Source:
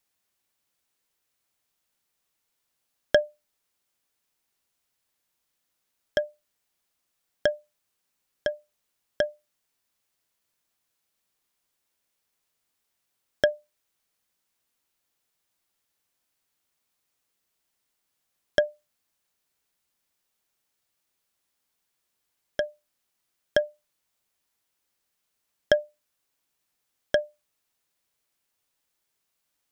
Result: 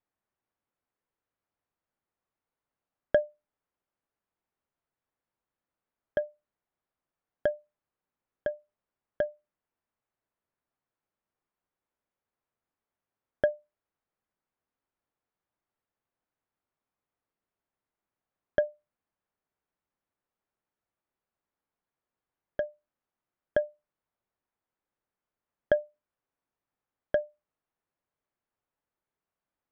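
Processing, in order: low-pass 1.4 kHz 12 dB/octave; trim -3 dB

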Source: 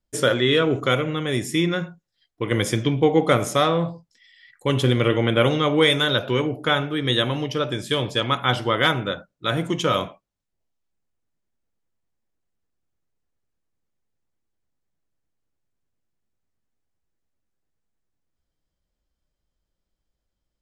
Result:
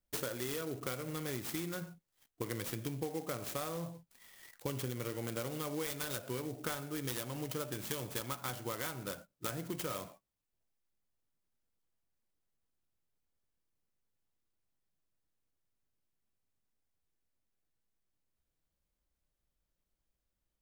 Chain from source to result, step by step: treble shelf 5.3 kHz +10 dB; compression 10:1, threshold -29 dBFS, peak gain reduction 17.5 dB; sampling jitter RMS 0.07 ms; trim -6.5 dB

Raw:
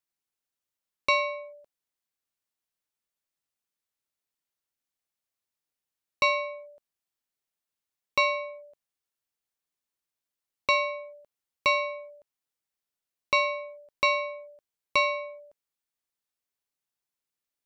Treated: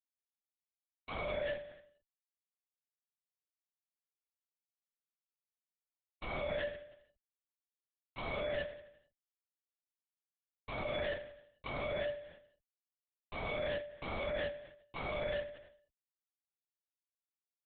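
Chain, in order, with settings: low-pass 2.2 kHz 6 dB/octave; in parallel at -3 dB: compression 6:1, threshold -39 dBFS, peak gain reduction 15.5 dB; on the sum: Schmitt trigger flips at -40.5 dBFS; doubling 36 ms -6.5 dB; feedback delay 89 ms, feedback 51%, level -12 dB; LPC vocoder at 8 kHz whisper; trim -7 dB

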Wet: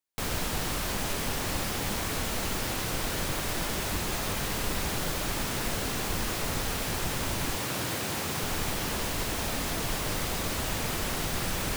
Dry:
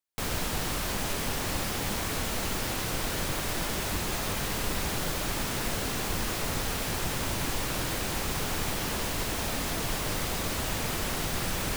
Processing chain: 7.55–8.43 s: high-pass 82 Hz 24 dB/octave

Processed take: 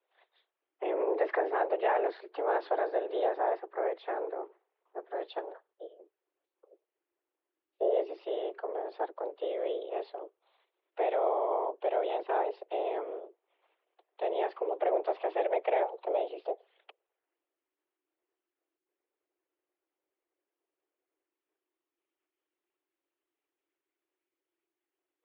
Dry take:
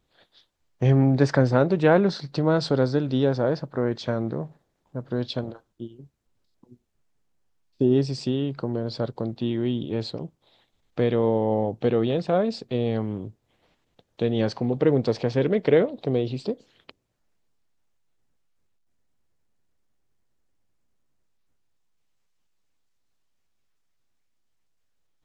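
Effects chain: whisper effect; peak limiter -11.5 dBFS, peak gain reduction 5.5 dB; mistuned SSB +180 Hz 200–3000 Hz; trim -6.5 dB

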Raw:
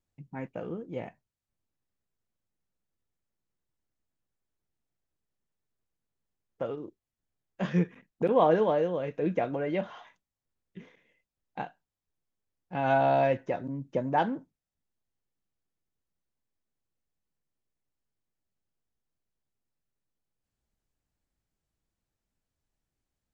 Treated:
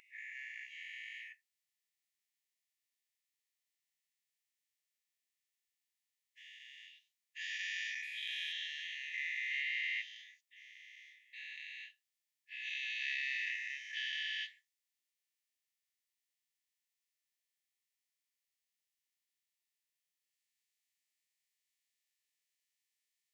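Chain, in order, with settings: every event in the spectrogram widened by 480 ms; brick-wall FIR high-pass 1.7 kHz; trim -1.5 dB

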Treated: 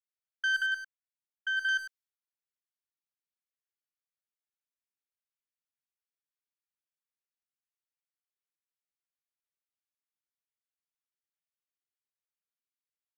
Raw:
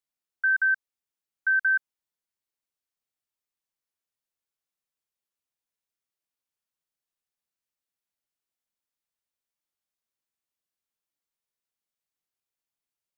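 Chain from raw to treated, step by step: 0.62–1.69 s: distance through air 470 m; valve stage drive 23 dB, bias 0.75; high-pass 1.3 kHz 24 dB/octave; speakerphone echo 100 ms, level -7 dB; tape noise reduction on one side only decoder only

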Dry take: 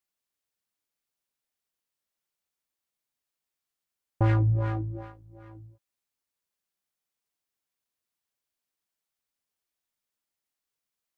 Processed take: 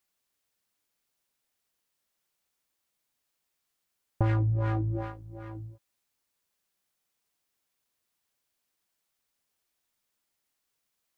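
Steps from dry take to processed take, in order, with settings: compression 6:1, threshold -31 dBFS, peak gain reduction 10.5 dB; trim +6.5 dB

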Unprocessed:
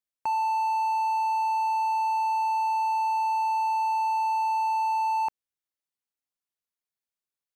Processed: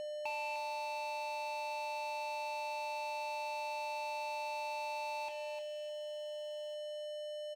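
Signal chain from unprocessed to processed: low-pass 4.8 kHz 24 dB/octave; tilt shelf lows -5 dB, about 890 Hz; feedback comb 840 Hz, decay 0.18 s, mix 70%; echo from a far wall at 250 m, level -28 dB; whistle 600 Hz -35 dBFS; compression, threshold -33 dBFS, peak gain reduction 3.5 dB; crossover distortion -53 dBFS; resonant high shelf 2 kHz +6.5 dB, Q 3; on a send: thinning echo 303 ms, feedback 22%, high-pass 620 Hz, level -6.5 dB; on the sum: trim -1.5 dB

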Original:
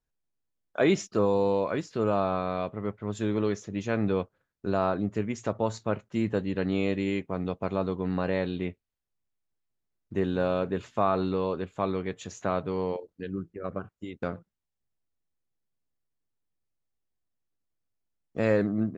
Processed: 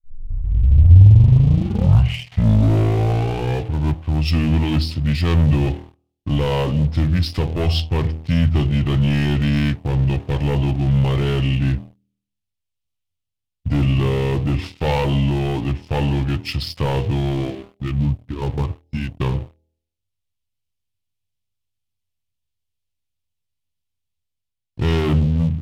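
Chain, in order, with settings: tape start-up on the opening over 2.81 s; de-hum 53.78 Hz, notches 21; waveshaping leveller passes 3; level rider gain up to 16 dB; ten-band graphic EQ 125 Hz +10 dB, 250 Hz -4 dB, 500 Hz -8 dB, 1 kHz -3 dB, 2 kHz -9 dB, 4 kHz +7 dB; speed mistake 45 rpm record played at 33 rpm; trim -7 dB

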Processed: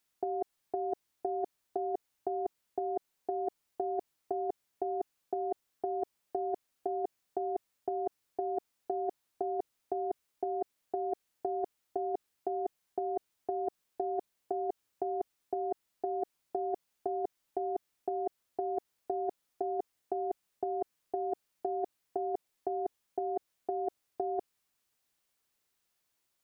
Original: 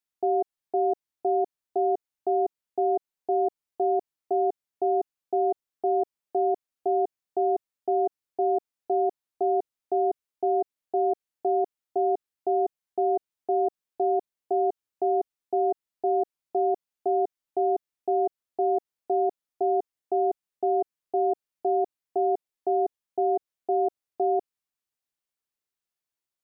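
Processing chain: compressor with a negative ratio -30 dBFS, ratio -0.5

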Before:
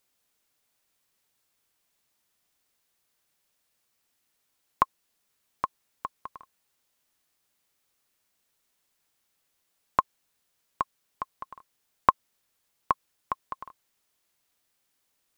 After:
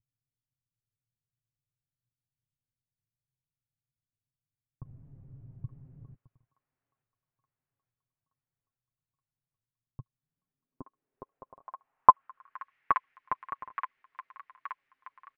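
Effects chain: 4.83–6.15 s: one-bit delta coder 16 kbps, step -31.5 dBFS; comb 7.4 ms, depth 61%; vibrato 3.2 Hz 73 cents; on a send: feedback echo behind a high-pass 874 ms, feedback 59%, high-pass 1.7 kHz, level -3.5 dB; on the sum: low-pass sweep 120 Hz -> 2 kHz, 9.96–12.74 s; trim -5 dB

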